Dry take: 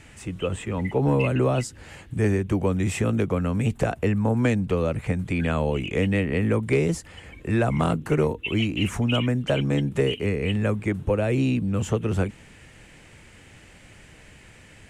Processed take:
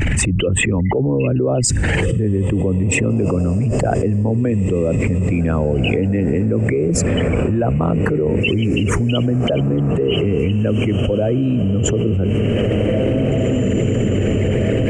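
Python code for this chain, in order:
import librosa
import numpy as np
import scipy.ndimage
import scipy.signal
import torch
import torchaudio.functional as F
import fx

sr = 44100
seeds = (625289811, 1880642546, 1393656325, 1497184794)

y = fx.envelope_sharpen(x, sr, power=2.0)
y = fx.echo_diffused(y, sr, ms=1978, feedback_pct=44, wet_db=-12)
y = fx.env_flatten(y, sr, amount_pct=100)
y = y * 10.0 ** (1.0 / 20.0)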